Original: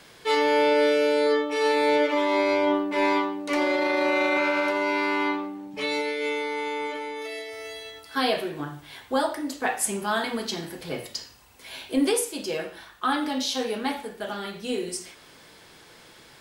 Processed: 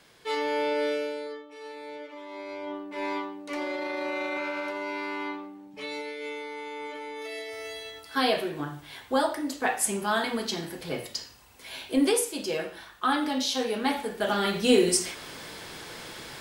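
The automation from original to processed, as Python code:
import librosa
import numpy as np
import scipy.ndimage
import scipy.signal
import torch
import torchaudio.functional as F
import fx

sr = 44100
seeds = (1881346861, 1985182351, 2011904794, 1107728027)

y = fx.gain(x, sr, db=fx.line((0.94, -7.0), (1.43, -19.5), (2.19, -19.5), (3.13, -8.5), (6.69, -8.5), (7.51, -0.5), (13.71, -0.5), (14.57, 9.0)))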